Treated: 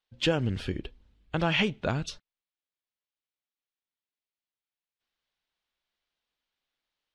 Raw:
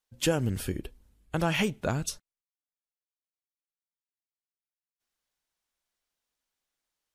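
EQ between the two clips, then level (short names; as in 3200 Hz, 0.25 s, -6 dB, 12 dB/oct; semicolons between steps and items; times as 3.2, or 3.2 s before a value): synth low-pass 3600 Hz, resonance Q 1.6; 0.0 dB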